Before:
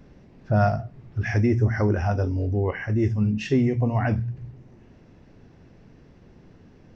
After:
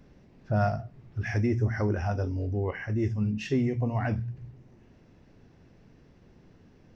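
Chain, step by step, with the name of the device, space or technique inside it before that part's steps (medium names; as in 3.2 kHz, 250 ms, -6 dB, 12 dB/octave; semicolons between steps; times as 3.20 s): exciter from parts (in parallel at -8 dB: high-pass 3.2 kHz 6 dB/octave + saturation -35 dBFS, distortion -12 dB); on the sum: trim -5.5 dB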